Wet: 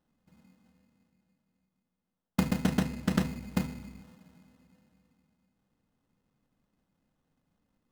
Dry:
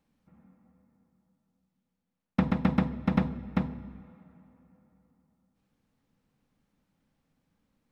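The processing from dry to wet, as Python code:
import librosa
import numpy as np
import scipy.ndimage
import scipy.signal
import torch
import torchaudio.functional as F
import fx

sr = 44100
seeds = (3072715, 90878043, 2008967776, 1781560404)

y = fx.sample_hold(x, sr, seeds[0], rate_hz=2300.0, jitter_pct=0)
y = fx.doppler_dist(y, sr, depth_ms=0.34, at=(2.63, 3.27))
y = F.gain(torch.from_numpy(y), -2.0).numpy()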